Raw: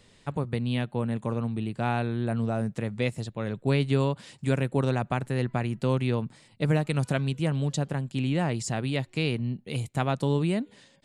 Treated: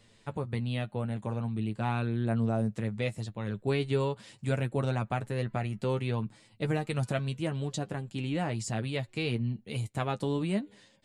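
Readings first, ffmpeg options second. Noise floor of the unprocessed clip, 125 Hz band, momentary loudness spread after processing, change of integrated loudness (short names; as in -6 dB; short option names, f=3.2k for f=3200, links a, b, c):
-60 dBFS, -4.0 dB, 6 LU, -4.0 dB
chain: -af "flanger=delay=8.8:depth=1.3:regen=30:speed=0.43:shape=triangular"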